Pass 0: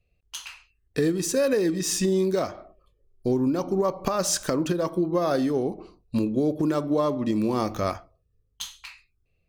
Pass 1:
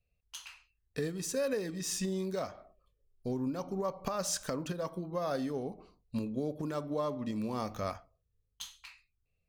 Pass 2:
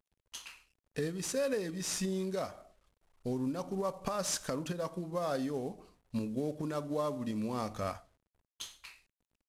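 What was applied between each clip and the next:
parametric band 340 Hz −11 dB 0.29 octaves; level −9 dB
variable-slope delta modulation 64 kbit/s

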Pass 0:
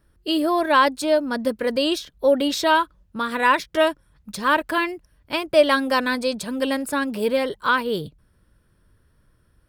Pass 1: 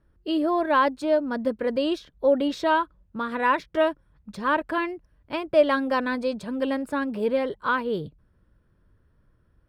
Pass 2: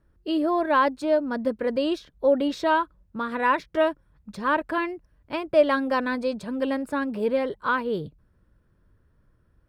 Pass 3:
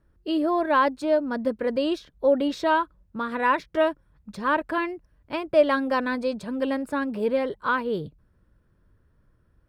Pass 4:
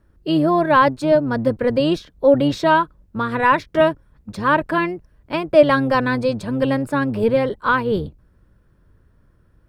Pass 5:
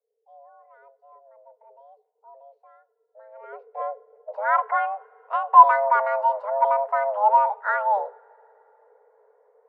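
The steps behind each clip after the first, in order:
low-pass filter 1,400 Hz 6 dB per octave; level −2 dB
parametric band 3,200 Hz −2 dB 0.3 octaves
no processing that can be heard
sub-octave generator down 1 octave, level −5 dB; level +6.5 dB
frequency shifter +410 Hz; low-pass filter sweep 160 Hz → 1,100 Hz, 0:02.87–0:04.55; coupled-rooms reverb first 0.42 s, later 3.6 s, from −18 dB, DRR 18.5 dB; level −7 dB

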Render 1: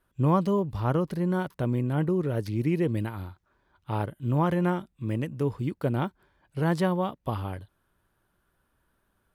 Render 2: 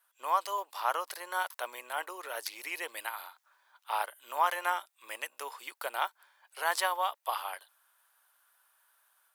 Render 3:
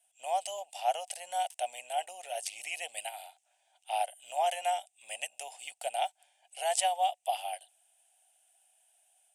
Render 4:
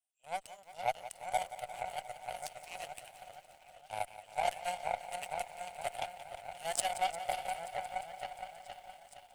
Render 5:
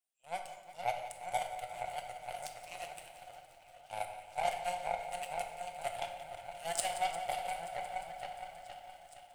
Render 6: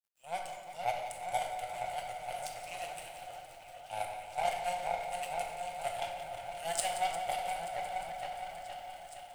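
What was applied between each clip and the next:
inverse Chebyshev high-pass filter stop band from 170 Hz, stop band 70 dB; high-shelf EQ 5,400 Hz +11 dB; automatic gain control gain up to 3.5 dB
drawn EQ curve 180 Hz 0 dB, 370 Hz −23 dB, 730 Hz +10 dB, 1,100 Hz −29 dB, 2,800 Hz +4 dB, 4,200 Hz −8 dB, 8,600 Hz +10 dB, 14,000 Hz −19 dB; level +1.5 dB
echo whose low-pass opens from repeat to repeat 467 ms, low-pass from 750 Hz, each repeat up 1 octave, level 0 dB; harmonic generator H 6 −30 dB, 7 −18 dB, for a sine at −13 dBFS; feedback echo at a low word length 176 ms, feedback 80%, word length 9 bits, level −14 dB; level −3 dB
convolution reverb RT60 1.0 s, pre-delay 6 ms, DRR 4 dB; level −2 dB
mu-law and A-law mismatch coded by mu

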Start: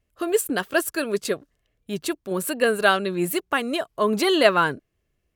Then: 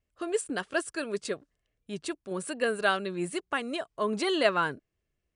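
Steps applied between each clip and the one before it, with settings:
Chebyshev low-pass filter 10,000 Hz, order 10
level −7 dB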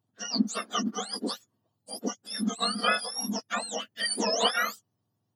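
frequency axis turned over on the octave scale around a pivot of 1,400 Hz
level +3.5 dB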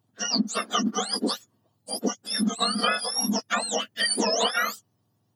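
downward compressor 6 to 1, threshold −28 dBFS, peak gain reduction 10 dB
level +7.5 dB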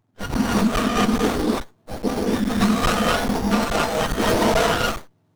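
reverb whose tail is shaped and stops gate 290 ms rising, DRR −4.5 dB
regular buffer underruns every 0.42 s, samples 512, zero, from 0:00.34
windowed peak hold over 17 samples
level +3 dB

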